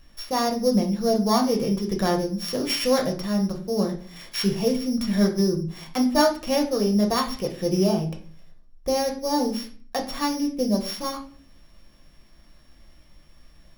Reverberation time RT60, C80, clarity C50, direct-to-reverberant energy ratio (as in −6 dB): 0.45 s, 14.5 dB, 10.5 dB, 1.5 dB